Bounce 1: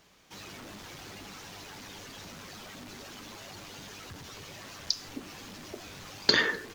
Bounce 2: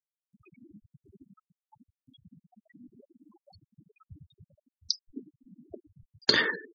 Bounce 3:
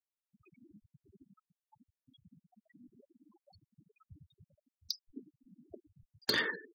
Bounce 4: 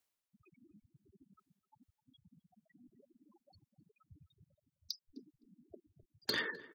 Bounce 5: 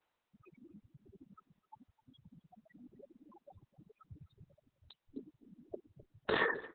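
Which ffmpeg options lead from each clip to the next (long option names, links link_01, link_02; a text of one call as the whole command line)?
ffmpeg -i in.wav -filter_complex "[0:a]afftfilt=real='re*gte(hypot(re,im),0.0282)':imag='im*gte(hypot(re,im),0.0282)':win_size=1024:overlap=0.75,acrossover=split=400|7700[link_01][link_02][link_03];[link_03]acompressor=mode=upward:threshold=-56dB:ratio=2.5[link_04];[link_01][link_02][link_04]amix=inputs=3:normalize=0" out.wav
ffmpeg -i in.wav -af "volume=15.5dB,asoftclip=hard,volume=-15.5dB,volume=-6.5dB" out.wav
ffmpeg -i in.wav -filter_complex "[0:a]areverse,acompressor=mode=upward:threshold=-57dB:ratio=2.5,areverse,asplit=2[link_01][link_02];[link_02]adelay=257,lowpass=frequency=1400:poles=1,volume=-18dB,asplit=2[link_03][link_04];[link_04]adelay=257,lowpass=frequency=1400:poles=1,volume=0.26[link_05];[link_01][link_03][link_05]amix=inputs=3:normalize=0,volume=-4.5dB" out.wav
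ffmpeg -i in.wav -af "equalizer=frequency=125:width_type=o:width=1:gain=4,equalizer=frequency=500:width_type=o:width=1:gain=7,equalizer=frequency=1000:width_type=o:width=1:gain=9,equalizer=frequency=4000:width_type=o:width=1:gain=-6,equalizer=frequency=8000:width_type=o:width=1:gain=6,equalizer=frequency=16000:width_type=o:width=1:gain=10,volume=3.5dB" -ar 48000 -c:a libopus -b:a 6k out.opus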